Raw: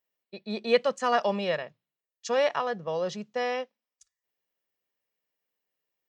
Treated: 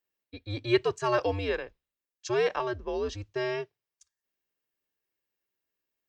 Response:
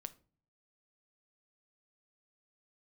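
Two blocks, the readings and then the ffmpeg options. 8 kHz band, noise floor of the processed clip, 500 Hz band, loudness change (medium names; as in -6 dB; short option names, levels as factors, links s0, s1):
-2.0 dB, under -85 dBFS, -1.5 dB, -1.5 dB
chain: -af "bandreject=f=910:w=18,afreqshift=-110,volume=0.841"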